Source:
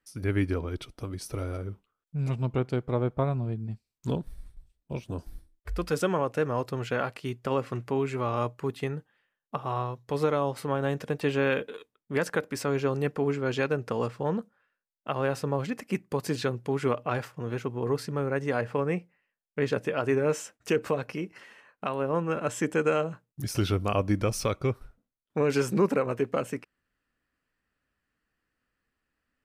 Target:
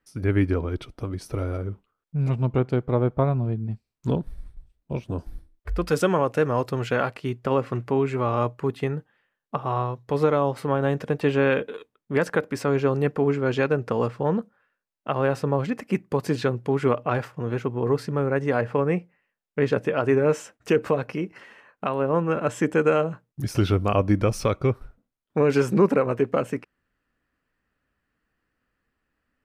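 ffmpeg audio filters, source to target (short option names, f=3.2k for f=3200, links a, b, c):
-af "asetnsamples=n=441:p=0,asendcmd='5.87 highshelf g -2.5;7.1 highshelf g -9',highshelf=f=3.3k:g=-10.5,volume=5.5dB"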